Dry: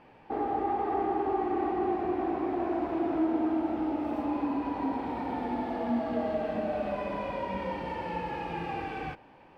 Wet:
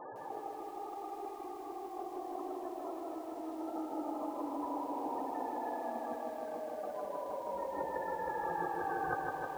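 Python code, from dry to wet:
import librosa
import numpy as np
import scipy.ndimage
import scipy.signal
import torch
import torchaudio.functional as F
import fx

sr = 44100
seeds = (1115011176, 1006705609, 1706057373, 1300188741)

y = scipy.signal.sosfilt(scipy.signal.cheby1(6, 3, 1800.0, 'lowpass', fs=sr, output='sos'), x)
y = fx.low_shelf(y, sr, hz=330.0, db=-9.0)
y = fx.spec_topn(y, sr, count=32)
y = fx.peak_eq(y, sr, hz=220.0, db=-12.5, octaves=0.64)
y = fx.over_compress(y, sr, threshold_db=-48.0, ratio=-1.0)
y = y + 10.0 ** (-18.5 / 20.0) * np.pad(y, (int(201 * sr / 1000.0), 0))[:len(y)]
y = fx.echo_crushed(y, sr, ms=157, feedback_pct=80, bits=11, wet_db=-4.5)
y = F.gain(torch.from_numpy(y), 5.5).numpy()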